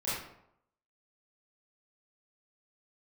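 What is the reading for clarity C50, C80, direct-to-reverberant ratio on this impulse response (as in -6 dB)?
-0.5 dB, 4.0 dB, -11.5 dB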